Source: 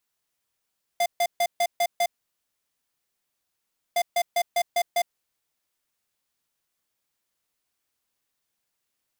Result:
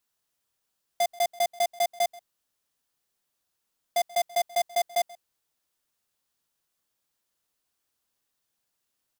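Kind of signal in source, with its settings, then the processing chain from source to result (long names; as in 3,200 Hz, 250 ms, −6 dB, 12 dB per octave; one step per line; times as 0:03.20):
beeps in groups square 697 Hz, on 0.06 s, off 0.14 s, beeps 6, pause 1.90 s, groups 2, −22 dBFS
parametric band 2,200 Hz −4 dB 0.44 octaves
single-tap delay 133 ms −22 dB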